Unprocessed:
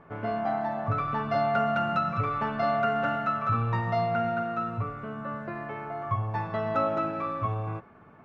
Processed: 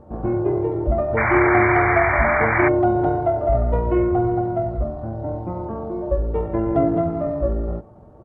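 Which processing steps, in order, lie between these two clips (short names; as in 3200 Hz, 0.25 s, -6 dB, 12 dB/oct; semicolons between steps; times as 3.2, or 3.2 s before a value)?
painted sound noise, 1.17–2.69, 1300–4600 Hz -28 dBFS; pitch shift -11.5 st; gain +8.5 dB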